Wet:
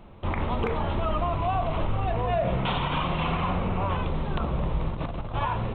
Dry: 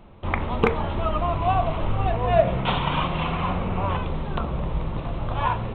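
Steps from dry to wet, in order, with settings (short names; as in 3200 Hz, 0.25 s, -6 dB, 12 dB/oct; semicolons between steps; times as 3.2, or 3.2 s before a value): 4.89–5.34 negative-ratio compressor -30 dBFS, ratio -0.5; limiter -17.5 dBFS, peak gain reduction 11 dB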